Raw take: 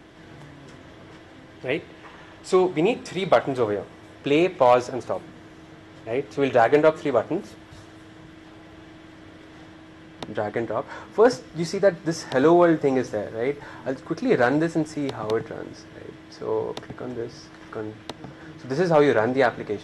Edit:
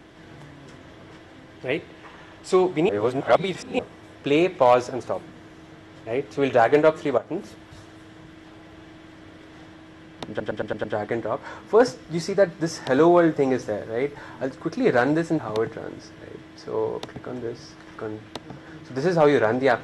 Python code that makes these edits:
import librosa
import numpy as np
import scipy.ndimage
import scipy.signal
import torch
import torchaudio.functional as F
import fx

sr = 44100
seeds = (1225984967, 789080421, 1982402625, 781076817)

y = fx.edit(x, sr, fx.reverse_span(start_s=2.89, length_s=0.9),
    fx.fade_in_from(start_s=7.18, length_s=0.26, floor_db=-12.5),
    fx.stutter(start_s=10.29, slice_s=0.11, count=6),
    fx.cut(start_s=14.84, length_s=0.29), tone=tone)